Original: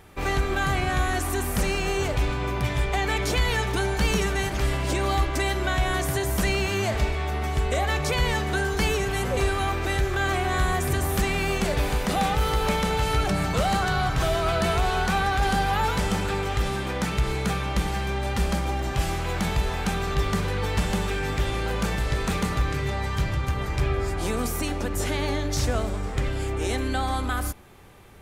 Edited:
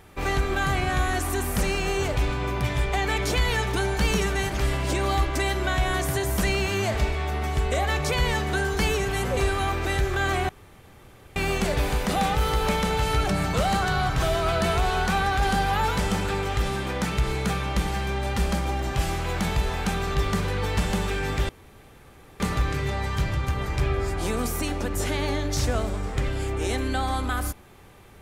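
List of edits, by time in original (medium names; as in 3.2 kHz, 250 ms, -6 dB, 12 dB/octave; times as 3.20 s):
10.49–11.36 s: room tone
21.49–22.40 s: room tone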